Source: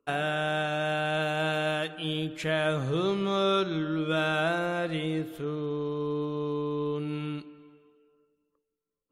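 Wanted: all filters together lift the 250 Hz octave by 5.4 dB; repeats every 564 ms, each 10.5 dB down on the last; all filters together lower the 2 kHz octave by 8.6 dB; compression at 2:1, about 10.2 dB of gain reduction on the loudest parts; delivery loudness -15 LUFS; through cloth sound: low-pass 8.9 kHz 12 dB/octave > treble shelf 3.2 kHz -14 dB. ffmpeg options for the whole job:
-af "equalizer=f=250:t=o:g=8.5,equalizer=f=2000:t=o:g=-8.5,acompressor=threshold=0.01:ratio=2,lowpass=8900,highshelf=f=3200:g=-14,aecho=1:1:564|1128|1692:0.299|0.0896|0.0269,volume=11.9"

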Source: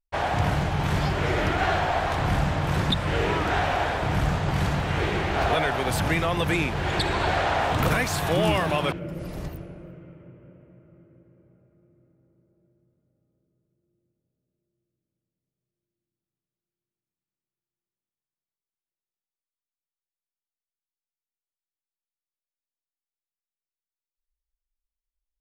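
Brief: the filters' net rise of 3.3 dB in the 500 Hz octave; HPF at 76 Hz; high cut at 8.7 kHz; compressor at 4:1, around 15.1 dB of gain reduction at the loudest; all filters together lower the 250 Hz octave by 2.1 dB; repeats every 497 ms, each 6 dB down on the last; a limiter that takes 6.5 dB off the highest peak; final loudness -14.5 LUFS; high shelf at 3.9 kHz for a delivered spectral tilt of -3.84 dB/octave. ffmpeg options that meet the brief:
-af "highpass=76,lowpass=8700,equalizer=f=250:t=o:g=-5.5,equalizer=f=500:t=o:g=5.5,highshelf=f=3900:g=3.5,acompressor=threshold=0.0141:ratio=4,alimiter=level_in=2.11:limit=0.0631:level=0:latency=1,volume=0.473,aecho=1:1:497|994|1491|1988|2485|2982:0.501|0.251|0.125|0.0626|0.0313|0.0157,volume=16.8"

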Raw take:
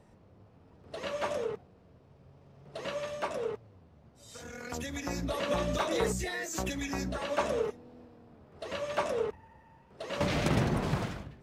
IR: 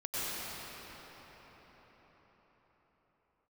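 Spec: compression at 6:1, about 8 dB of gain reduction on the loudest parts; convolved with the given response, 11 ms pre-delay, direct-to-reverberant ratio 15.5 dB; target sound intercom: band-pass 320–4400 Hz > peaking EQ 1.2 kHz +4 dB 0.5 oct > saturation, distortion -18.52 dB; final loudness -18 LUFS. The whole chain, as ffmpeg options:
-filter_complex "[0:a]acompressor=threshold=0.0224:ratio=6,asplit=2[s0][s1];[1:a]atrim=start_sample=2205,adelay=11[s2];[s1][s2]afir=irnorm=-1:irlink=0,volume=0.075[s3];[s0][s3]amix=inputs=2:normalize=0,highpass=320,lowpass=4400,equalizer=f=1200:t=o:w=0.5:g=4,asoftclip=threshold=0.0335,volume=13.3"

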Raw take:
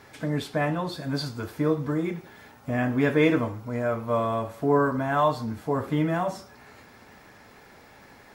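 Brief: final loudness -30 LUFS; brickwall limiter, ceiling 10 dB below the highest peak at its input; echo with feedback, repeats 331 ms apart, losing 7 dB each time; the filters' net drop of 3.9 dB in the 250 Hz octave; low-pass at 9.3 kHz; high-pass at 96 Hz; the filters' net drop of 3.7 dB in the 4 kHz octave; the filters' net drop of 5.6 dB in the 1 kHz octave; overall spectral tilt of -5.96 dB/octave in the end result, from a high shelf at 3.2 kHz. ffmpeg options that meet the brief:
-af "highpass=96,lowpass=9300,equalizer=f=250:t=o:g=-4.5,equalizer=f=1000:t=o:g=-7,highshelf=f=3200:g=3.5,equalizer=f=4000:t=o:g=-6.5,alimiter=limit=0.0794:level=0:latency=1,aecho=1:1:331|662|993|1324|1655:0.447|0.201|0.0905|0.0407|0.0183,volume=1.26"

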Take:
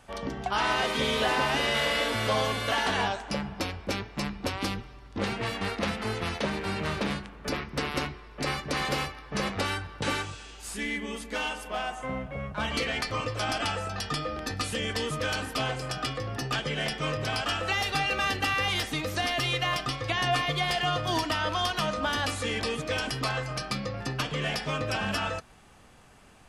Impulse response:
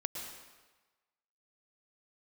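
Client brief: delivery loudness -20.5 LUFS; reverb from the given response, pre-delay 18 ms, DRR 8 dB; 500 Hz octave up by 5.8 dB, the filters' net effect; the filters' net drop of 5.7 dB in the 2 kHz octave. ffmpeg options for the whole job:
-filter_complex "[0:a]equalizer=f=500:t=o:g=7.5,equalizer=f=2000:t=o:g=-8,asplit=2[s0][s1];[1:a]atrim=start_sample=2205,adelay=18[s2];[s1][s2]afir=irnorm=-1:irlink=0,volume=0.355[s3];[s0][s3]amix=inputs=2:normalize=0,volume=2.51"

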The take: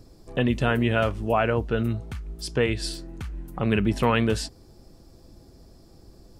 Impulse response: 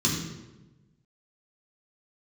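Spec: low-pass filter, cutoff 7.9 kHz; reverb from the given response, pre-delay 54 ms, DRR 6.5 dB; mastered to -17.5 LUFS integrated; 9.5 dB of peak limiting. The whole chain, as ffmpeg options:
-filter_complex "[0:a]lowpass=7900,alimiter=limit=0.133:level=0:latency=1,asplit=2[s0][s1];[1:a]atrim=start_sample=2205,adelay=54[s2];[s1][s2]afir=irnorm=-1:irlink=0,volume=0.141[s3];[s0][s3]amix=inputs=2:normalize=0,volume=2.24"

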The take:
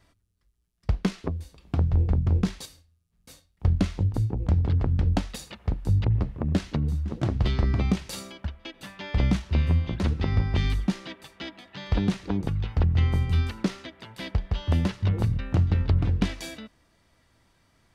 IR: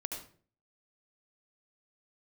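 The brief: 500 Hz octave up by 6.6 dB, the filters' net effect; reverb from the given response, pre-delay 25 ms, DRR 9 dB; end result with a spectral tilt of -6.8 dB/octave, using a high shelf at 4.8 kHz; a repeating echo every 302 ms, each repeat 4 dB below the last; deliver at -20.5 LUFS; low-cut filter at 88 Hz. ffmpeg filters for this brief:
-filter_complex "[0:a]highpass=88,equalizer=f=500:t=o:g=8.5,highshelf=f=4800:g=3.5,aecho=1:1:302|604|906|1208|1510|1812|2114|2416|2718:0.631|0.398|0.25|0.158|0.0994|0.0626|0.0394|0.0249|0.0157,asplit=2[s0][s1];[1:a]atrim=start_sample=2205,adelay=25[s2];[s1][s2]afir=irnorm=-1:irlink=0,volume=0.335[s3];[s0][s3]amix=inputs=2:normalize=0,volume=1.78"

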